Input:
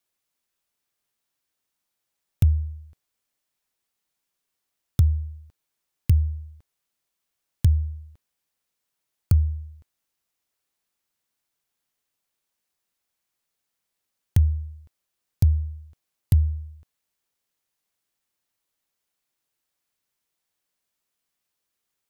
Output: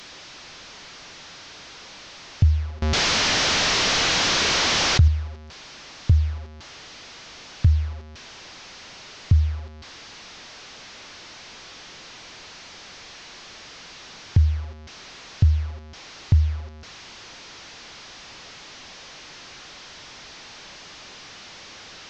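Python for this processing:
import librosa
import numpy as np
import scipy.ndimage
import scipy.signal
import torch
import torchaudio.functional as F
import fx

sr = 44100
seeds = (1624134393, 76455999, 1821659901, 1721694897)

y = fx.delta_mod(x, sr, bps=32000, step_db=-37.0)
y = fx.env_flatten(y, sr, amount_pct=70, at=(2.82, 5.08))
y = F.gain(torch.from_numpy(y), 1.5).numpy()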